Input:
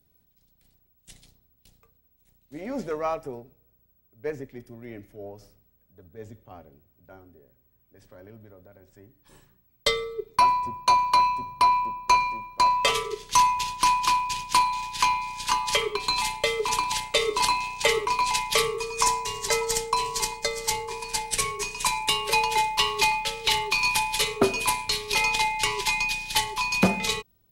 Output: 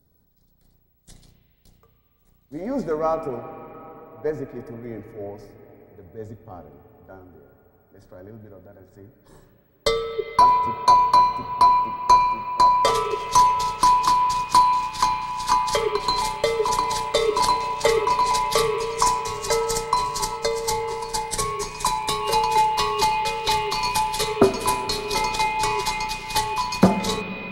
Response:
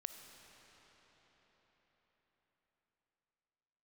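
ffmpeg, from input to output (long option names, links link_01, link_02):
-filter_complex "[0:a]asplit=2[link_01][link_02];[link_02]lowpass=frequency=4600:width=0.5412,lowpass=frequency=4600:width=1.3066[link_03];[1:a]atrim=start_sample=2205,lowpass=2700[link_04];[link_03][link_04]afir=irnorm=-1:irlink=0,volume=6dB[link_05];[link_01][link_05]amix=inputs=2:normalize=0,volume=-1dB"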